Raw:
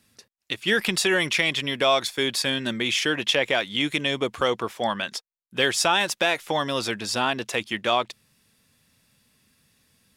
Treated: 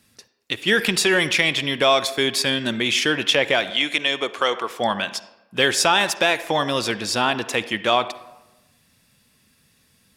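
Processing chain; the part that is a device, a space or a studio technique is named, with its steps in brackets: 3.70–4.70 s: frequency weighting A; filtered reverb send (on a send: high-pass 180 Hz + low-pass 4.8 kHz 12 dB/octave + reverberation RT60 1.0 s, pre-delay 46 ms, DRR 13.5 dB); on the sum: trim +3.5 dB

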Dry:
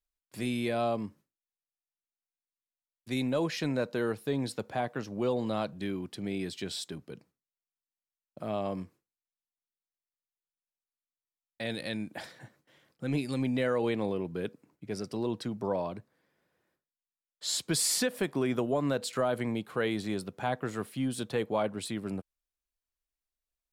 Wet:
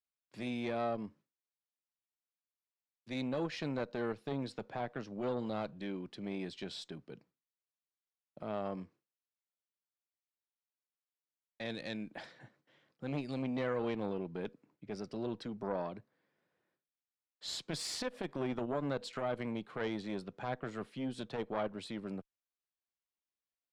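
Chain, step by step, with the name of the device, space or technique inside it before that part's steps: valve radio (band-pass 110–4700 Hz; valve stage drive 21 dB, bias 0.6; transformer saturation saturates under 500 Hz); trim -2 dB

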